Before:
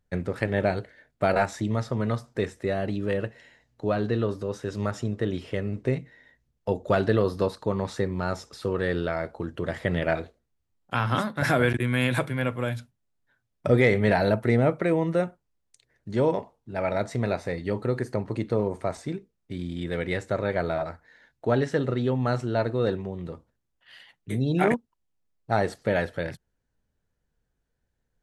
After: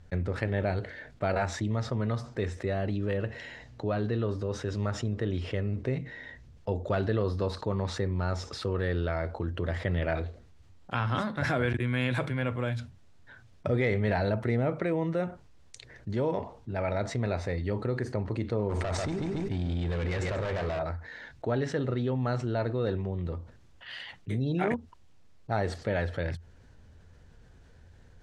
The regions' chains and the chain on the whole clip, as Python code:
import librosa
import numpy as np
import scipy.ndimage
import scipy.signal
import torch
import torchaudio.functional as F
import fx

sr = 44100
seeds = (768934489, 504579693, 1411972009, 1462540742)

y = fx.chain(x, sr, fx.overload_stage(gain_db=29.0),
    fx.echo_feedback(ms=140, feedback_pct=23, wet_db=-9.5),
    fx.env_flatten(amount_pct=100), at=(18.69, 20.79))
y = scipy.signal.sosfilt(scipy.signal.butter(2, 6100.0, 'lowpass', fs=sr, output='sos'), y)
y = fx.peak_eq(y, sr, hz=85.0, db=10.5, octaves=0.47)
y = fx.env_flatten(y, sr, amount_pct=50)
y = y * librosa.db_to_amplitude(-9.0)